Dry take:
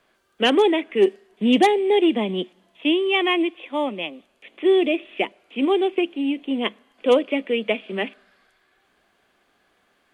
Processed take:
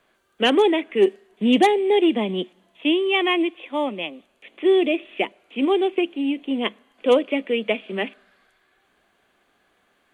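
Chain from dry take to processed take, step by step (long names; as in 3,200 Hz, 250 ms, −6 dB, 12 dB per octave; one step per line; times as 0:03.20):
parametric band 5,100 Hz −6 dB 0.29 octaves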